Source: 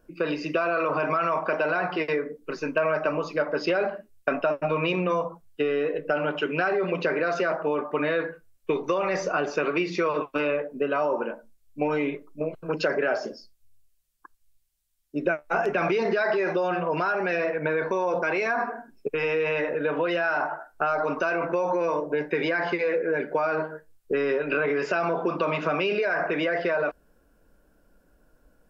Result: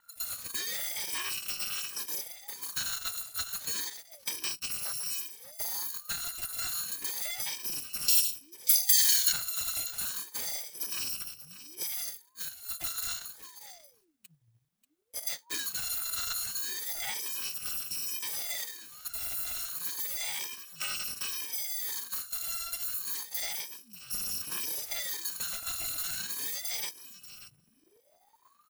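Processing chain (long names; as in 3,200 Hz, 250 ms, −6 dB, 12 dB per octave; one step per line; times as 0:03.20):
samples in bit-reversed order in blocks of 256 samples
0:11.83–0:12.74: Butterworth high-pass 390 Hz 48 dB per octave
in parallel at −2 dB: downward compressor, threshold −38 dBFS, peak gain reduction 17.5 dB
0:08.08–0:09.33: on the sum: high shelf with overshoot 2,500 Hz +12 dB, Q 1.5
on a send: single-tap delay 587 ms −14 dB
on the sum: ring modulator whose carrier an LFO sweeps 760 Hz, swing 85%, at 0.31 Hz
level −8.5 dB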